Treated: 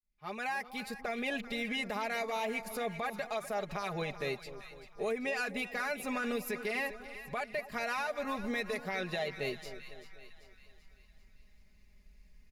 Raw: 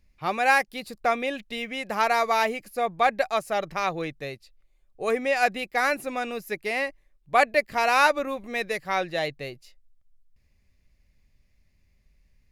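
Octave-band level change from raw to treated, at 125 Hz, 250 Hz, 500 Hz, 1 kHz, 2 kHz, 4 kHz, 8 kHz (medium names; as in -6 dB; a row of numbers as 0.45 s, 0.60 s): -3.0 dB, -4.0 dB, -9.5 dB, -14.5 dB, -10.0 dB, -8.0 dB, -8.0 dB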